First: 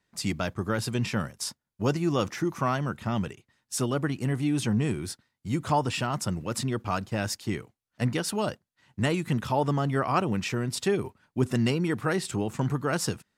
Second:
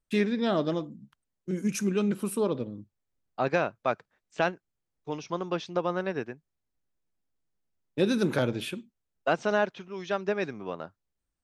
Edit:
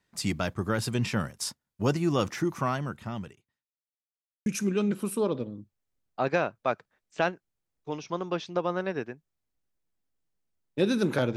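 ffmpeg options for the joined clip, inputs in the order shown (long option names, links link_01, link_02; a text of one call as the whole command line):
ffmpeg -i cue0.wav -i cue1.wav -filter_complex "[0:a]apad=whole_dur=11.36,atrim=end=11.36,asplit=2[link_01][link_02];[link_01]atrim=end=3.69,asetpts=PTS-STARTPTS,afade=type=out:start_time=2.44:duration=1.25[link_03];[link_02]atrim=start=3.69:end=4.46,asetpts=PTS-STARTPTS,volume=0[link_04];[1:a]atrim=start=1.66:end=8.56,asetpts=PTS-STARTPTS,afade=type=in:duration=0.004:curve=hsin[link_05];[link_03][link_04][link_05]concat=n=3:v=0:a=1" out.wav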